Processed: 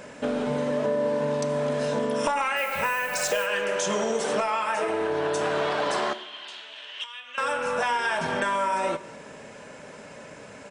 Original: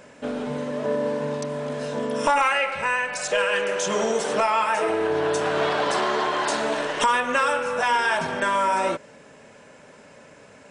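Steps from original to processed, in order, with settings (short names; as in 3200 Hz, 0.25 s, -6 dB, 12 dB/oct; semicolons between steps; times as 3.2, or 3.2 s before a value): compressor, threshold -28 dBFS, peak gain reduction 11.5 dB; 2.56–3.45 added noise violet -47 dBFS; 6.13–7.38 band-pass 3100 Hz, Q 4.5; outdoor echo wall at 80 m, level -28 dB; two-slope reverb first 0.79 s, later 2.1 s, from -18 dB, DRR 12.5 dB; gain +4.5 dB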